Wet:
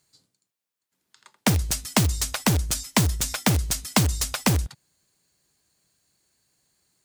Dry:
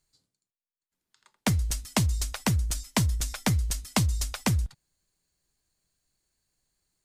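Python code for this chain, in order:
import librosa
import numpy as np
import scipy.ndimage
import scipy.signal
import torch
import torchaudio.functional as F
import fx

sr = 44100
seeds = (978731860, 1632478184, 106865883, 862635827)

p1 = scipy.signal.sosfilt(scipy.signal.butter(2, 97.0, 'highpass', fs=sr, output='sos'), x)
p2 = (np.mod(10.0 ** (24.5 / 20.0) * p1 + 1.0, 2.0) - 1.0) / 10.0 ** (24.5 / 20.0)
p3 = p1 + (p2 * librosa.db_to_amplitude(-5.0))
y = p3 * librosa.db_to_amplitude(5.0)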